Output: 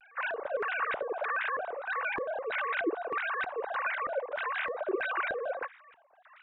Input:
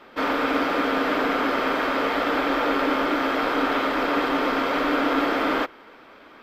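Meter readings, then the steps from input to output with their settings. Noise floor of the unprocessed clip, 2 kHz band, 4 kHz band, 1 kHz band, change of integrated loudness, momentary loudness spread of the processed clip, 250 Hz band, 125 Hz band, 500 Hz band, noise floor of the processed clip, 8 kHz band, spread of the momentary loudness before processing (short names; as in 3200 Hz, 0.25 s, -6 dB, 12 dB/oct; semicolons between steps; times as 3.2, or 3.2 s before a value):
-48 dBFS, -6.5 dB, -16.5 dB, -10.0 dB, -10.0 dB, 4 LU, -20.0 dB, under -20 dB, -9.0 dB, -60 dBFS, under -35 dB, 1 LU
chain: sine-wave speech; LFO band-pass square 1.6 Hz 390–1800 Hz; shaped vibrato square 4.4 Hz, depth 250 cents; gain -2.5 dB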